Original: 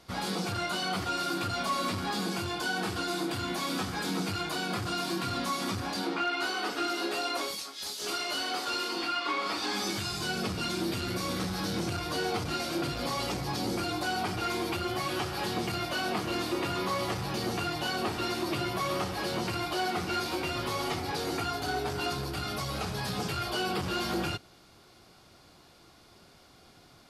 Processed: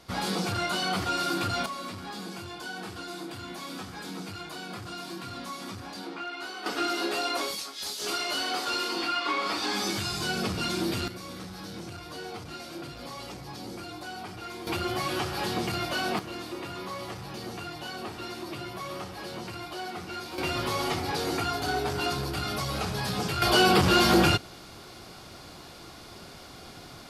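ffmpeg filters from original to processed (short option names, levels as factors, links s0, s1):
-af "asetnsamples=n=441:p=0,asendcmd='1.66 volume volume -6.5dB;6.66 volume volume 2.5dB;11.08 volume volume -8dB;14.67 volume volume 2dB;16.19 volume volume -6dB;20.38 volume volume 3dB;23.42 volume volume 11dB',volume=1.41"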